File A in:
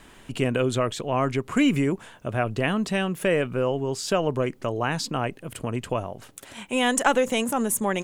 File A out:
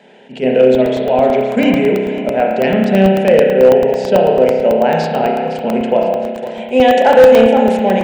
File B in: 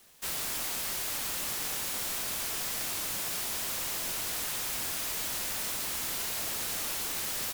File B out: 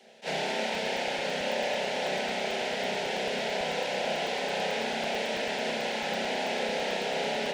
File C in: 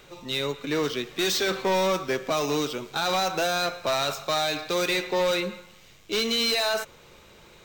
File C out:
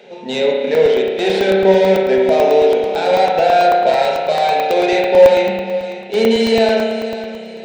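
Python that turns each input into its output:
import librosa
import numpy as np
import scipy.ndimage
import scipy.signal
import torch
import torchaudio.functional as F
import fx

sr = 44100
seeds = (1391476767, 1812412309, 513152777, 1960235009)

p1 = fx.tracing_dist(x, sr, depth_ms=0.11)
p2 = scipy.signal.sosfilt(scipy.signal.butter(4, 220.0, 'highpass', fs=sr, output='sos'), p1)
p3 = fx.spacing_loss(p2, sr, db_at_10k=31)
p4 = fx.fixed_phaser(p3, sr, hz=310.0, stages=6)
p5 = fx.rev_spring(p4, sr, rt60_s=1.5, pass_ms=(31,), chirp_ms=40, drr_db=-1.0)
p6 = fx.rider(p5, sr, range_db=5, speed_s=2.0)
p7 = p5 + (p6 * 10.0 ** (-1.0 / 20.0))
p8 = fx.peak_eq(p7, sr, hz=830.0, db=3.0, octaves=0.44)
p9 = p8 + fx.echo_feedback(p8, sr, ms=510, feedback_pct=37, wet_db=-12.5, dry=0)
p10 = np.clip(p9, -10.0 ** (-9.5 / 20.0), 10.0 ** (-9.5 / 20.0))
p11 = fx.buffer_crackle(p10, sr, first_s=0.75, period_s=0.11, block=64, kind='zero')
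p12 = fx.attack_slew(p11, sr, db_per_s=320.0)
y = p12 * 10.0 ** (8.5 / 20.0)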